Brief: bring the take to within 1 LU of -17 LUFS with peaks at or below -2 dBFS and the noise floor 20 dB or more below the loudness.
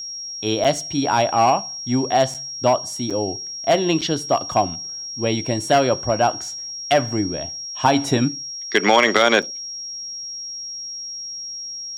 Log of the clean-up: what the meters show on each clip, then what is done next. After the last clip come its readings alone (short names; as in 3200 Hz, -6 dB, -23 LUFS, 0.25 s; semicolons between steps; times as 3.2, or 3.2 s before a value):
dropouts 5; longest dropout 6.3 ms; steady tone 5600 Hz; tone level -29 dBFS; loudness -21.0 LUFS; peak -2.5 dBFS; loudness target -17.0 LUFS
-> interpolate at 0.64/2.34/3.1/4.01/9.42, 6.3 ms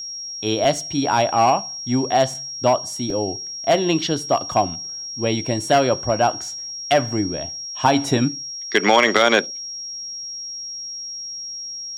dropouts 0; steady tone 5600 Hz; tone level -29 dBFS
-> notch 5600 Hz, Q 30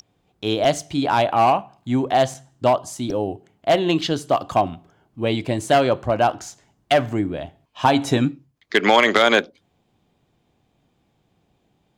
steady tone none; loudness -20.5 LUFS; peak -3.0 dBFS; loudness target -17.0 LUFS
-> gain +3.5 dB; limiter -2 dBFS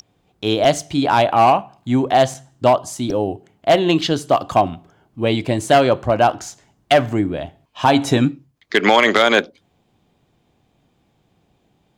loudness -17.5 LUFS; peak -2.0 dBFS; noise floor -64 dBFS